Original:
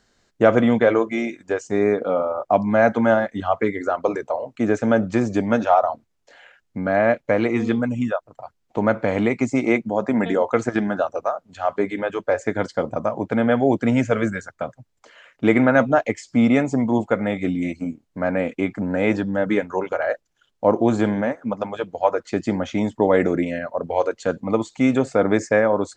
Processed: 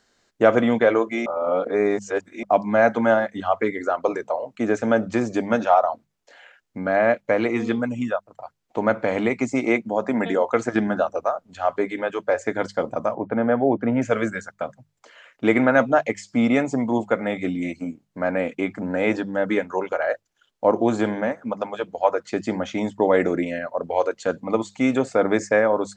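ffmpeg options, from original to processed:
-filter_complex "[0:a]asettb=1/sr,asplit=3[a][b][c];[a]atrim=end=10.734[d];[b]atrim=start=10.73:end=11.72,asetpts=PTS-STARTPTS,afade=t=in:d=0.004:c=qsin,afade=t=out:st=0.986:d=0.004:c=qsin,lowshelf=f=200:g=9[e];[c]atrim=start=11.716[f];[d][e]acrossfade=d=0.004:c1=hsin:c2=qsin[g];[g][f]acrossfade=d=0.004:c1=qsin:c2=hsin,asettb=1/sr,asplit=3[h][i][j];[h]atrim=end=13.154[k];[i]atrim=start=13.15:end=14.02,asetpts=PTS-STARTPTS,afade=t=in:d=0.004:c=qsin,afade=t=out:st=0.866:d=0.004:c=qsin,lowpass=1.5k[l];[j]atrim=start=14.016[m];[k][l]acrossfade=d=0.004:c1=hsin:c2=qsin[n];[n][m]acrossfade=d=0.004:c1=qsin:c2=hsin,asplit=3[o][p][q];[o]atrim=end=1.262[r];[p]atrim=start=1.258:end=2.432,asetpts=PTS-STARTPTS,areverse[s];[q]atrim=start=2.428[t];[r][s]acrossfade=d=0.004:c1=hsin:c2=hsin[u];[u][t]acrossfade=d=0.004:c1=hsin:c2=hsin,lowshelf=f=170:g=-8.5,bandreject=f=50:t=h:w=6,bandreject=f=100:t=h:w=6,bandreject=f=150:t=h:w=6,bandreject=f=200:t=h:w=6"

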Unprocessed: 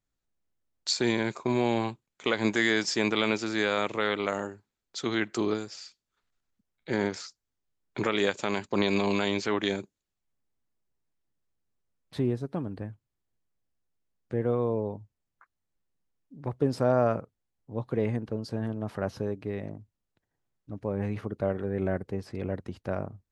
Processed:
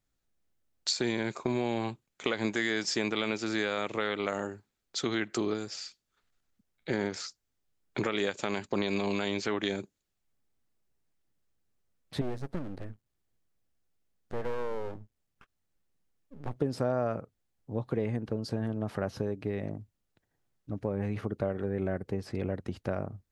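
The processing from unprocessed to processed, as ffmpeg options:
-filter_complex "[0:a]asettb=1/sr,asplit=3[a][b][c];[a]atrim=end=12.214[d];[b]atrim=start=12.21:end=16.56,asetpts=PTS-STARTPTS,afade=t=in:d=0.004:c=qsin,afade=t=out:st=4.346:d=0.004:c=qsin,aeval=exprs='max(val(0),0)':c=same[e];[c]atrim=start=16.556[f];[d][e]acrossfade=d=0.004:c1=hsin:c2=qsin[g];[g][f]acrossfade=d=0.004:c1=qsin:c2=hsin,equalizer=f=990:w=6.3:g=-3.5,acompressor=threshold=-32dB:ratio=3,volume=3.5dB"

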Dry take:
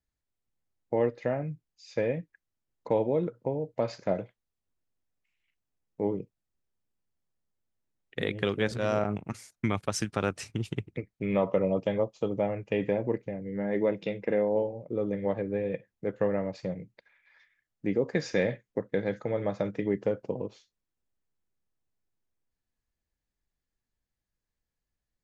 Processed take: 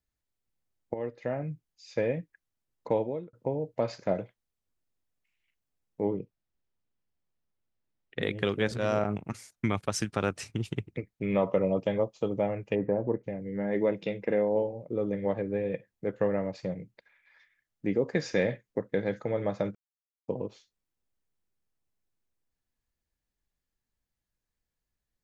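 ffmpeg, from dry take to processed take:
-filter_complex "[0:a]asettb=1/sr,asplit=3[a][b][c];[a]atrim=end=6.064[d];[b]atrim=start=6.06:end=8.23,asetpts=PTS-STARTPTS,afade=t=in:d=0.004:c=qsin,afade=t=out:st=2.166:d=0.004:c=qsin,lowpass=4.7k[e];[c]atrim=start=8.226[f];[d][e]acrossfade=d=0.004:c1=hsin:c2=qsin[g];[g][f]acrossfade=d=0.004:c1=qsin:c2=hsin,asplit=3[h][i][j];[h]afade=t=out:st=12.74:d=0.02[k];[i]lowpass=f=1.4k:w=0.5412,lowpass=f=1.4k:w=1.3066,afade=t=in:st=12.74:d=0.02,afade=t=out:st=13.23:d=0.02[l];[j]afade=t=in:st=13.23:d=0.02[m];[k][l][m]amix=inputs=3:normalize=0,asplit=5[n][o][p][q][r];[n]atrim=end=0.94,asetpts=PTS-STARTPTS,afade=t=out:st=0.936:d=0.004:c=hsin:silence=0.251189[s];[o]atrim=start=0.94:end=3.33,asetpts=PTS-STARTPTS,afade=t=in:d=0.57:silence=0.251189,afade=t=out:st=1.96:d=0.43[t];[p]atrim=start=3.33:end=19.75,asetpts=PTS-STARTPTS,afade=t=in:d=0.004:c=hsin,afade=t=out:st=16.416:d=0.004:c=hsin[u];[q]atrim=start=19.75:end=20.28,asetpts=PTS-STARTPTS,volume=0[v];[r]atrim=start=20.28,asetpts=PTS-STARTPTS,afade=t=in:d=0.004:c=hsin[w];[s][t][u][v][w]concat=n=5:v=0:a=1"

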